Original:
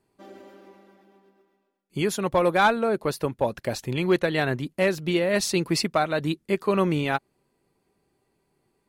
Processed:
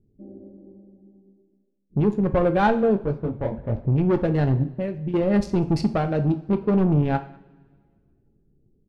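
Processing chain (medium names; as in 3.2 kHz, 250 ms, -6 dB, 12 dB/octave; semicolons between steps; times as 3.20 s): local Wiener filter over 41 samples; level-controlled noise filter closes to 430 Hz, open at -21 dBFS; tilt EQ -4 dB/octave; 4.63–5.14 s: compression 3:1, threshold -28 dBFS, peak gain reduction 11.5 dB; saturation -14.5 dBFS, distortion -13 dB; echo from a far wall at 34 m, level -26 dB; two-slope reverb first 0.39 s, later 1.8 s, from -21 dB, DRR 6.5 dB; 2.94–3.75 s: detune thickener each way 57 cents -> 44 cents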